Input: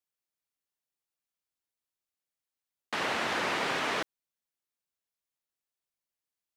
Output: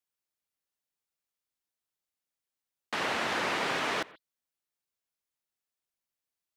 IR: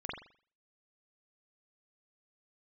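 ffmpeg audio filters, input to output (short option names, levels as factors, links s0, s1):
-filter_complex "[0:a]asplit=2[s0][s1];[1:a]atrim=start_sample=2205,atrim=end_sample=3528,adelay=85[s2];[s1][s2]afir=irnorm=-1:irlink=0,volume=0.075[s3];[s0][s3]amix=inputs=2:normalize=0"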